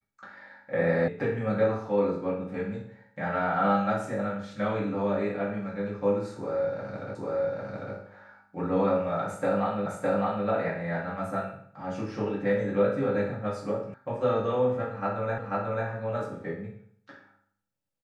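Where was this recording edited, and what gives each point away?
0:01.08: cut off before it has died away
0:07.15: the same again, the last 0.8 s
0:09.86: the same again, the last 0.61 s
0:13.94: cut off before it has died away
0:15.38: the same again, the last 0.49 s

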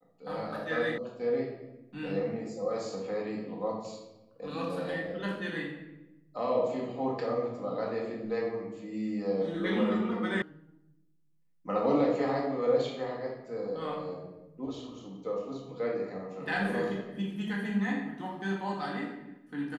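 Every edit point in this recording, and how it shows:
0:00.98: cut off before it has died away
0:10.42: cut off before it has died away

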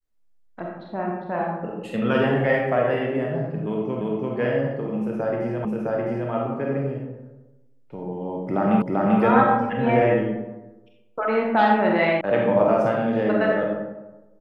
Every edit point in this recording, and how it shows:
0:04.01: the same again, the last 0.34 s
0:05.65: the same again, the last 0.66 s
0:08.82: the same again, the last 0.39 s
0:12.21: cut off before it has died away

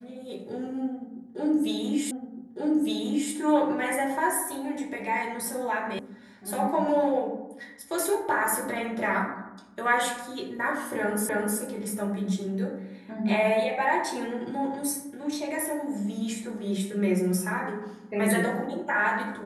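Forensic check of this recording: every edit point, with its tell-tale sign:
0:02.11: the same again, the last 1.21 s
0:05.99: cut off before it has died away
0:11.29: the same again, the last 0.31 s

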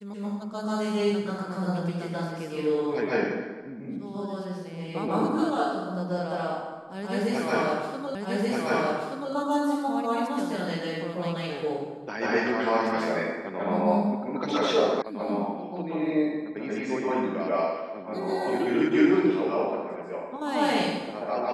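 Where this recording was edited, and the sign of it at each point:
0:08.15: the same again, the last 1.18 s
0:15.02: cut off before it has died away

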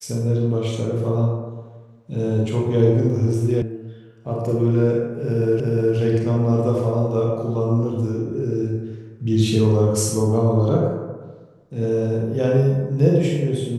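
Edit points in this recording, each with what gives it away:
0:03.62: cut off before it has died away
0:05.60: the same again, the last 0.36 s

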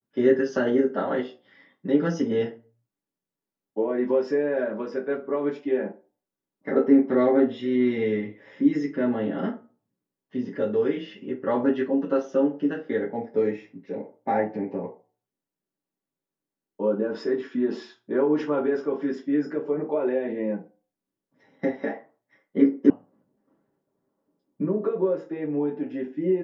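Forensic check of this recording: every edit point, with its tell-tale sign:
0:22.90: cut off before it has died away

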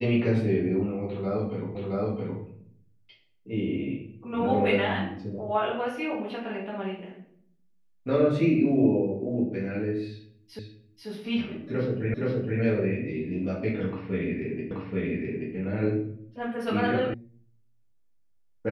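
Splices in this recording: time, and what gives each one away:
0:01.75: the same again, the last 0.67 s
0:10.59: the same again, the last 0.49 s
0:12.14: the same again, the last 0.47 s
0:14.71: the same again, the last 0.83 s
0:17.14: cut off before it has died away

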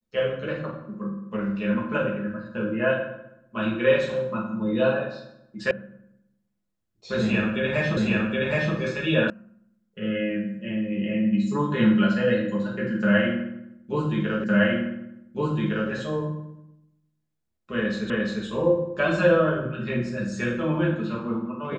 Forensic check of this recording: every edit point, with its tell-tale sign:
0:05.71: cut off before it has died away
0:07.97: the same again, the last 0.77 s
0:09.30: cut off before it has died away
0:14.44: the same again, the last 1.46 s
0:18.10: the same again, the last 0.35 s

